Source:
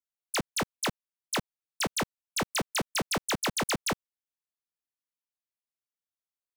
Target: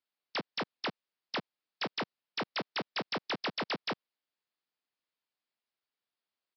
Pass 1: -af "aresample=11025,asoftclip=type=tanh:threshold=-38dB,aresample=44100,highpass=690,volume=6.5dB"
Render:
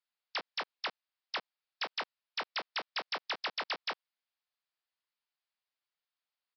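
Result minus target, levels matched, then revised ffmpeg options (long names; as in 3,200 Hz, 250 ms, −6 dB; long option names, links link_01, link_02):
250 Hz band −14.0 dB
-af "aresample=11025,asoftclip=type=tanh:threshold=-38dB,aresample=44100,highpass=190,volume=6.5dB"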